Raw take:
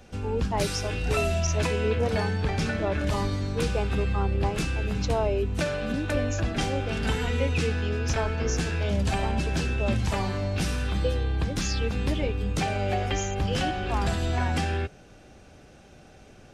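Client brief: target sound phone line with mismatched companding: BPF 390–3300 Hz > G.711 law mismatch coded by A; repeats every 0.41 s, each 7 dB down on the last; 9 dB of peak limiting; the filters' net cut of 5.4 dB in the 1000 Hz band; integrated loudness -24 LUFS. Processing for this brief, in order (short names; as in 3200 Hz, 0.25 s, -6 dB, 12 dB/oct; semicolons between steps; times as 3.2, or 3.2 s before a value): bell 1000 Hz -7.5 dB; limiter -23 dBFS; BPF 390–3300 Hz; feedback echo 0.41 s, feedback 45%, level -7 dB; G.711 law mismatch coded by A; gain +15.5 dB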